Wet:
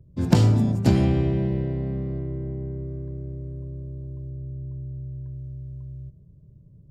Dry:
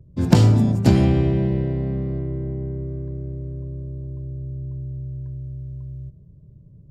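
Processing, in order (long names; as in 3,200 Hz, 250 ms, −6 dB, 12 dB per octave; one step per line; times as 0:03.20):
0:04.30–0:05.34: one half of a high-frequency compander decoder only
level −3.5 dB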